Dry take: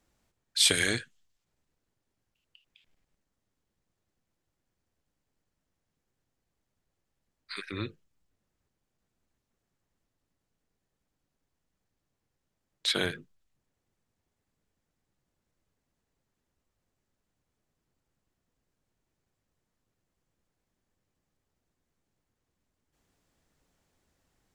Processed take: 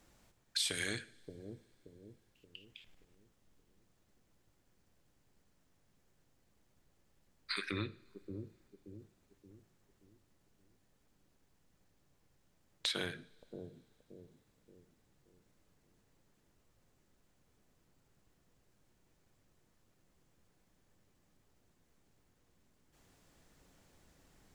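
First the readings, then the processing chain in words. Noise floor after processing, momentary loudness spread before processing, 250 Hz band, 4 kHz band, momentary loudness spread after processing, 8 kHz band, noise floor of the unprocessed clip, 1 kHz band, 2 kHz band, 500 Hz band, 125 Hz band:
-74 dBFS, 19 LU, -6.0 dB, -9.5 dB, 24 LU, -12.0 dB, -83 dBFS, -6.0 dB, -9.0 dB, -8.0 dB, -5.0 dB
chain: compression 5:1, threshold -43 dBFS, peak gain reduction 21.5 dB; on a send: bucket-brigade echo 576 ms, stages 2048, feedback 42%, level -5.5 dB; on the sum: two-slope reverb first 0.59 s, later 4.1 s, from -22 dB, DRR 14.5 dB; trim +7 dB

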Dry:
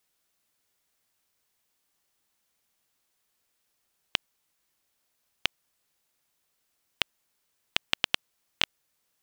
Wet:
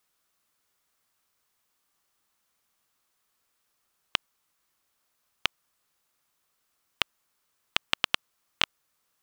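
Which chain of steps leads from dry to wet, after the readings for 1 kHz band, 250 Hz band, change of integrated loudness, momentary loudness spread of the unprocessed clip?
+4.5 dB, 0.0 dB, +0.5 dB, 5 LU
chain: peaking EQ 1.2 kHz +6.5 dB 0.61 oct

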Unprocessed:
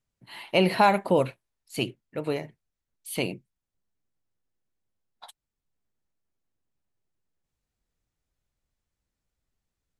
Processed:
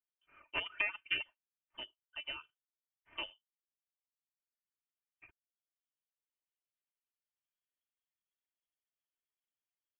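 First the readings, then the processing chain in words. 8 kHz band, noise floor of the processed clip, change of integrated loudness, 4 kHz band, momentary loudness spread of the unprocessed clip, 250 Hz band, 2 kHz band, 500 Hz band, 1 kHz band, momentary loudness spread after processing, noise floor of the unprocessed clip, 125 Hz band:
under -35 dB, under -85 dBFS, -13.5 dB, -7.0 dB, 23 LU, -31.5 dB, -6.0 dB, -28.5 dB, -25.0 dB, 14 LU, under -85 dBFS, -33.0 dB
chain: median filter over 15 samples; Chebyshev shaper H 3 -11 dB, 5 -30 dB, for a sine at -9.5 dBFS; tilt EQ +3.5 dB/octave; comb 3.4 ms, depth 77%; compression 5:1, threshold -23 dBFS, peak gain reduction 6.5 dB; reverb removal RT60 1.2 s; wow and flutter 17 cents; gain riding within 3 dB 0.5 s; frequency inversion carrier 3.3 kHz; trim -4 dB

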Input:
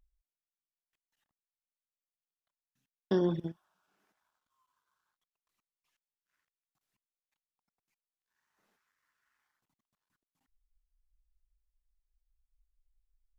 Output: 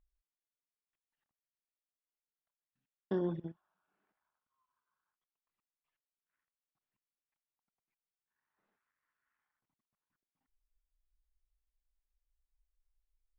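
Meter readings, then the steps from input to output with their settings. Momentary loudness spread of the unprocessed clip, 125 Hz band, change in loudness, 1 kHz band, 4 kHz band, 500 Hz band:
11 LU, -5.5 dB, -5.5 dB, -5.5 dB, under -10 dB, -5.5 dB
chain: low-pass 2.4 kHz 12 dB/octave; trim -5.5 dB

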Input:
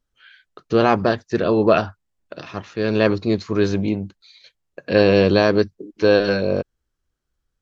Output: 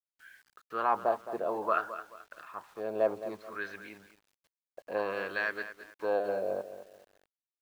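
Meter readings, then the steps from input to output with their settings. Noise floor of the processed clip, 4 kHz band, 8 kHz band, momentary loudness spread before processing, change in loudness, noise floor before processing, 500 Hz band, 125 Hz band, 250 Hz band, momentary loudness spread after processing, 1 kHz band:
under -85 dBFS, -22.5 dB, no reading, 16 LU, -14.5 dB, -77 dBFS, -15.0 dB, -32.0 dB, -24.5 dB, 16 LU, -8.0 dB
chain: wah-wah 0.59 Hz 680–1800 Hz, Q 3.6; word length cut 10-bit, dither none; bit-crushed delay 216 ms, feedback 35%, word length 8-bit, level -12 dB; trim -3.5 dB

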